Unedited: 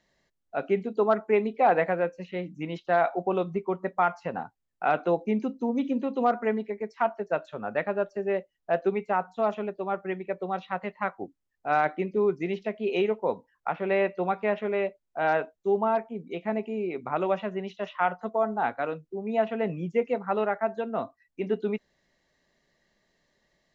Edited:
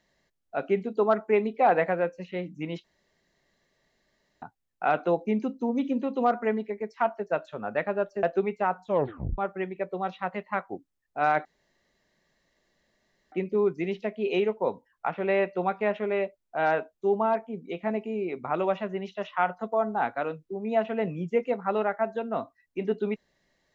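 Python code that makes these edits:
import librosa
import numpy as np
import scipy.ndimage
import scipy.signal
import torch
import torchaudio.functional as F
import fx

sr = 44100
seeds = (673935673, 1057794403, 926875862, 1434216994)

y = fx.edit(x, sr, fx.room_tone_fill(start_s=2.84, length_s=1.58),
    fx.cut(start_s=8.23, length_s=0.49),
    fx.tape_stop(start_s=9.35, length_s=0.52),
    fx.insert_room_tone(at_s=11.94, length_s=1.87), tone=tone)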